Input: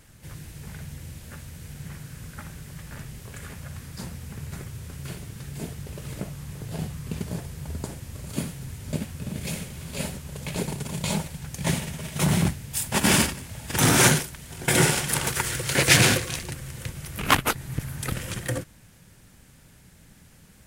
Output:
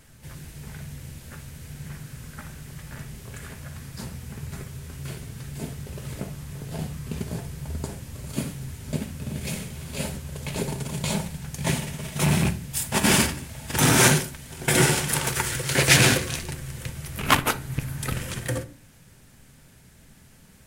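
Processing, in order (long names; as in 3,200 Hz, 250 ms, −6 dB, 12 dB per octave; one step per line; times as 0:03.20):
loose part that buzzes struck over −19 dBFS, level −20 dBFS
convolution reverb, pre-delay 3 ms, DRR 9 dB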